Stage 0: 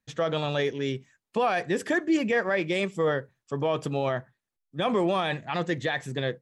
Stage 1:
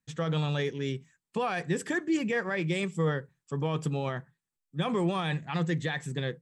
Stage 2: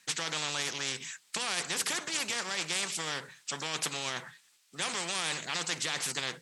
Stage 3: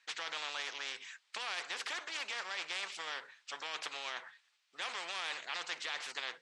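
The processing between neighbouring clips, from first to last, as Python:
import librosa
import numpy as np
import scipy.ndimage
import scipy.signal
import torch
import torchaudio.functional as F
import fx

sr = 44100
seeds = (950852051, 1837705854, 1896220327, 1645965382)

y1 = fx.graphic_eq_31(x, sr, hz=(160, 630, 8000), db=(12, -8, 8))
y1 = F.gain(torch.from_numpy(y1), -4.0).numpy()
y2 = fx.bandpass_q(y1, sr, hz=4100.0, q=0.74)
y2 = fx.spectral_comp(y2, sr, ratio=4.0)
y2 = F.gain(torch.from_numpy(y2), 8.5).numpy()
y3 = fx.bandpass_edges(y2, sr, low_hz=610.0, high_hz=3800.0)
y3 = F.gain(torch.from_numpy(y3), -4.0).numpy()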